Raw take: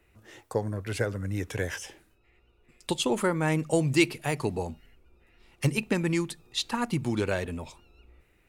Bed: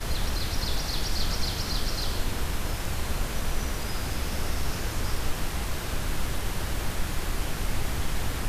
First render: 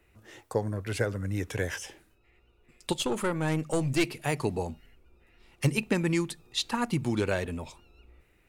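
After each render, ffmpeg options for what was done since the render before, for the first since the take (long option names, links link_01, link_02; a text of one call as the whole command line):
ffmpeg -i in.wav -filter_complex "[0:a]asettb=1/sr,asplit=3[link_01][link_02][link_03];[link_01]atrim=end=2.924[link_04];[link_02]atrim=start=2.92:end=4.17,asetpts=PTS-STARTPTS,afade=type=in:duration=0.004:curve=qsin,afade=type=out:start_time=1.246:duration=0.004:curve=qsin,aeval=exprs='(tanh(8.91*val(0)+0.45)-tanh(0.45))/8.91':channel_layout=same[link_05];[link_03]atrim=start=4.166[link_06];[link_04][link_05]acrossfade=duration=0.004:curve1=hsin:curve2=qsin[link_07];[link_07][link_06]acrossfade=duration=0.004:curve1=qsin:curve2=hsin" out.wav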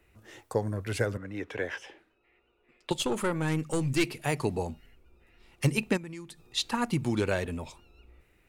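ffmpeg -i in.wav -filter_complex "[0:a]asettb=1/sr,asplit=3[link_01][link_02][link_03];[link_01]atrim=end=1.174[link_04];[link_02]atrim=start=1.17:end=2.91,asetpts=PTS-STARTPTS,afade=type=in:duration=0.004:curve=qsin,afade=type=out:start_time=1.736:duration=0.004:curve=qsin,acrossover=split=240 3900:gain=0.2 1 0.1[link_05][link_06][link_07];[link_05][link_06][link_07]amix=inputs=3:normalize=0[link_08];[link_03]atrim=start=2.906[link_09];[link_04][link_08]acrossfade=duration=0.004:curve1=hsin:curve2=qsin[link_10];[link_10][link_09]acrossfade=duration=0.004:curve1=qsin:curve2=hsin,asettb=1/sr,asplit=3[link_11][link_12][link_13];[link_11]atrim=end=3.424[link_14];[link_12]atrim=start=3.42:end=4.07,asetpts=PTS-STARTPTS,afade=type=in:duration=0.004:curve=qsin,afade=type=out:start_time=0.646:duration=0.004:curve=qsin,equalizer=frequency=650:width=3:gain=-9[link_15];[link_13]atrim=start=4.066[link_16];[link_14][link_15]acrossfade=duration=0.004:curve1=hsin:curve2=qsin[link_17];[link_17][link_16]acrossfade=duration=0.004:curve1=qsin:curve2=hsin,asplit=3[link_18][link_19][link_20];[link_18]afade=type=out:start_time=5.96:duration=0.02[link_21];[link_19]acompressor=threshold=-46dB:ratio=2.5:attack=3.2:release=140:knee=1:detection=peak,afade=type=in:start_time=5.96:duration=0.02,afade=type=out:start_time=6.44:duration=0.02[link_22];[link_20]afade=type=in:start_time=6.44:duration=0.02[link_23];[link_21][link_22][link_23]amix=inputs=3:normalize=0" out.wav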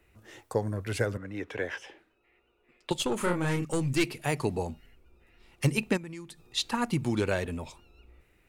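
ffmpeg -i in.wav -filter_complex "[0:a]asettb=1/sr,asplit=3[link_01][link_02][link_03];[link_01]atrim=end=3.174[link_04];[link_02]atrim=start=3.17:end=3.65,asetpts=PTS-STARTPTS,afade=type=in:duration=0.004:curve=qsin,afade=type=out:start_time=0.476:duration=0.004:curve=qsin,asplit=2[link_05][link_06];[link_06]adelay=34,volume=-3.5dB[link_07];[link_05][link_07]amix=inputs=2:normalize=0,atrim=end_sample=21168[link_08];[link_03]atrim=start=3.646[link_09];[link_04][link_08]acrossfade=duration=0.004:curve1=hsin:curve2=qsin[link_10];[link_10][link_09]acrossfade=duration=0.004:curve1=qsin:curve2=hsin" out.wav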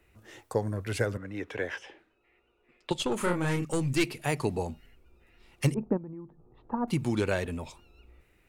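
ffmpeg -i in.wav -filter_complex "[0:a]asettb=1/sr,asplit=3[link_01][link_02][link_03];[link_01]atrim=end=1.794[link_04];[link_02]atrim=start=1.79:end=3.11,asetpts=PTS-STARTPTS,afade=type=in:duration=0.004:curve=qsin,afade=type=out:start_time=1.316:duration=0.004:curve=qsin,highshelf=frequency=9900:gain=-12[link_05];[link_03]atrim=start=3.106[link_06];[link_04][link_05]acrossfade=duration=0.004:curve1=hsin:curve2=qsin[link_07];[link_07][link_06]acrossfade=duration=0.004:curve1=qsin:curve2=hsin,asettb=1/sr,asplit=3[link_08][link_09][link_10];[link_08]atrim=end=5.744[link_11];[link_09]atrim=start=5.74:end=6.88,asetpts=PTS-STARTPTS,afade=type=in:duration=0.004:curve=qsin,afade=type=out:start_time=1.136:duration=0.004:curve=qsin,lowpass=frequency=1000:width=0.5412,lowpass=frequency=1000:width=1.3066[link_12];[link_10]atrim=start=6.876[link_13];[link_11][link_12]acrossfade=duration=0.004:curve1=hsin:curve2=qsin[link_14];[link_14][link_13]acrossfade=duration=0.004:curve1=qsin:curve2=hsin" out.wav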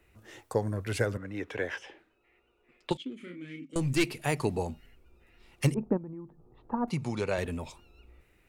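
ffmpeg -i in.wav -filter_complex "[0:a]asettb=1/sr,asplit=3[link_01][link_02][link_03];[link_01]atrim=end=2.974[link_04];[link_02]atrim=start=2.97:end=3.76,asetpts=PTS-STARTPTS,afade=type=in:duration=0.004:curve=qsin,afade=type=out:start_time=0.786:duration=0.004:curve=qsin,asplit=3[link_05][link_06][link_07];[link_05]bandpass=frequency=270:width_type=q:width=8,volume=0dB[link_08];[link_06]bandpass=frequency=2290:width_type=q:width=8,volume=-6dB[link_09];[link_07]bandpass=frequency=3010:width_type=q:width=8,volume=-9dB[link_10];[link_08][link_09][link_10]amix=inputs=3:normalize=0[link_11];[link_03]atrim=start=3.756[link_12];[link_04][link_11]acrossfade=duration=0.004:curve1=hsin:curve2=qsin[link_13];[link_13][link_12]acrossfade=duration=0.004:curve1=qsin:curve2=hsin,asettb=1/sr,asplit=3[link_14][link_15][link_16];[link_14]atrim=end=6.894[link_17];[link_15]atrim=start=6.89:end=7.38,asetpts=PTS-STARTPTS,afade=type=in:duration=0.004:curve=qsin,afade=type=out:start_time=0.486:duration=0.004:curve=qsin,highpass=120,equalizer=frequency=220:width_type=q:width=4:gain=-4,equalizer=frequency=320:width_type=q:width=4:gain=-10,equalizer=frequency=1600:width_type=q:width=4:gain=-6,equalizer=frequency=3200:width_type=q:width=4:gain=-7,equalizer=frequency=8300:width_type=q:width=4:gain=-8,lowpass=frequency=9600:width=0.5412,lowpass=frequency=9600:width=1.3066[link_18];[link_16]atrim=start=7.376[link_19];[link_17][link_18]acrossfade=duration=0.004:curve1=hsin:curve2=qsin[link_20];[link_20][link_19]acrossfade=duration=0.004:curve1=qsin:curve2=hsin" out.wav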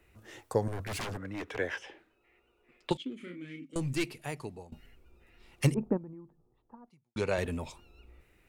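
ffmpeg -i in.wav -filter_complex "[0:a]asettb=1/sr,asplit=3[link_01][link_02][link_03];[link_01]atrim=end=0.684[link_04];[link_02]atrim=start=0.68:end=1.58,asetpts=PTS-STARTPTS,afade=type=in:duration=0.004:curve=qsin,afade=type=out:start_time=0.896:duration=0.004:curve=qsin,aeval=exprs='0.0266*(abs(mod(val(0)/0.0266+3,4)-2)-1)':channel_layout=same[link_05];[link_03]atrim=start=1.576[link_06];[link_04][link_05]acrossfade=duration=0.004:curve1=hsin:curve2=qsin[link_07];[link_07][link_06]acrossfade=duration=0.004:curve1=qsin:curve2=hsin,asplit=3[link_08][link_09][link_10];[link_08]atrim=end=4.72,asetpts=PTS-STARTPTS,afade=type=out:start_time=3.27:duration=1.45:silence=0.0891251[link_11];[link_09]atrim=start=4.72:end=7.16,asetpts=PTS-STARTPTS,afade=type=in:duration=0.004:curve=hsin:silence=0.0891251,afade=type=out:start_time=1.09:duration=1.35:curve=qua[link_12];[link_10]atrim=start=7.16,asetpts=PTS-STARTPTS,afade=type=in:duration=0.004:curve=hsin[link_13];[link_11][link_12][link_13]concat=n=3:v=0:a=1" out.wav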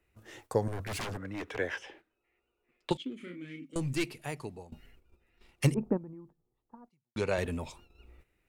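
ffmpeg -i in.wav -af "agate=range=-10dB:threshold=-56dB:ratio=16:detection=peak" out.wav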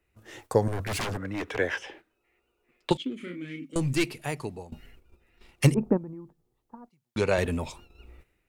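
ffmpeg -i in.wav -af "dynaudnorm=framelen=120:gausssize=5:maxgain=6dB" out.wav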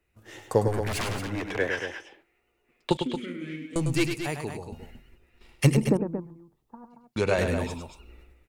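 ffmpeg -i in.wav -af "aecho=1:1:102|227.4:0.447|0.355" out.wav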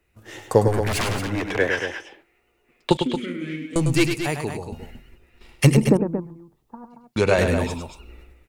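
ffmpeg -i in.wav -af "volume=6dB,alimiter=limit=-2dB:level=0:latency=1" out.wav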